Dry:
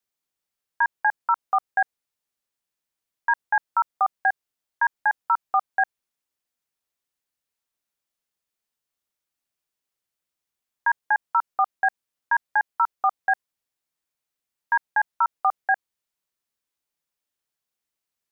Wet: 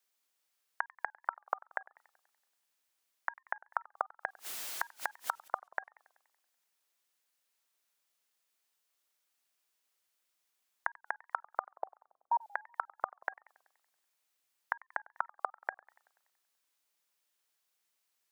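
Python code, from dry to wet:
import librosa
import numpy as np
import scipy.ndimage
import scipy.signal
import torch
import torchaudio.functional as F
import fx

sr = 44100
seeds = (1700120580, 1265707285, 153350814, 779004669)

y = fx.zero_step(x, sr, step_db=-39.0, at=(4.28, 5.48))
y = fx.steep_lowpass(y, sr, hz=830.0, slope=48, at=(11.71, 12.41))
y = fx.gate_flip(y, sr, shuts_db=-23.0, range_db=-37)
y = fx.highpass(y, sr, hz=620.0, slope=6)
y = fx.echo_warbled(y, sr, ms=95, feedback_pct=58, rate_hz=2.8, cents=198, wet_db=-23)
y = y * 10.0 ** (5.0 / 20.0)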